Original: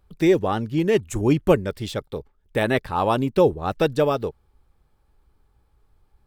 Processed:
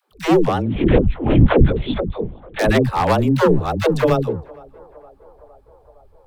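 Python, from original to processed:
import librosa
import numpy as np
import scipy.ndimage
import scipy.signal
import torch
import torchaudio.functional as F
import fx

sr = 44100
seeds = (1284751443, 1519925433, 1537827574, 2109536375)

p1 = np.minimum(x, 2.0 * 10.0 ** (-16.0 / 20.0) - x)
p2 = p1 + fx.echo_banded(p1, sr, ms=462, feedback_pct=72, hz=710.0, wet_db=-22.5, dry=0)
p3 = fx.lpc_vocoder(p2, sr, seeds[0], excitation='whisper', order=8, at=(0.62, 2.59))
p4 = fx.rider(p3, sr, range_db=10, speed_s=2.0)
p5 = p3 + (p4 * librosa.db_to_amplitude(-1.0))
p6 = fx.low_shelf(p5, sr, hz=390.0, db=5.0)
p7 = fx.dispersion(p6, sr, late='lows', ms=126.0, hz=330.0)
y = p7 * librosa.db_to_amplitude(-2.5)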